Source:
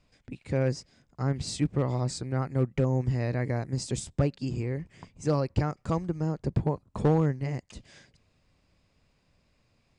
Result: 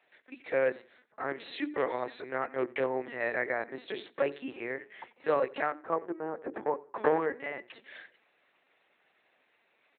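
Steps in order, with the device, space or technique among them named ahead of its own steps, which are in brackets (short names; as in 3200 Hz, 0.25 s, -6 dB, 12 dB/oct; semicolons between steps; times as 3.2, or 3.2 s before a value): 5.71–7.26 LPF 1100 Hz -> 2500 Hz 12 dB/oct; steep high-pass 200 Hz 96 dB/oct; notches 60/120/180/240/300/360/420/480 Hz; talking toy (LPC vocoder at 8 kHz pitch kept; HPF 410 Hz 12 dB/oct; bell 1800 Hz +8 dB 0.56 oct); feedback echo 89 ms, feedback 23%, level -23 dB; gain +4 dB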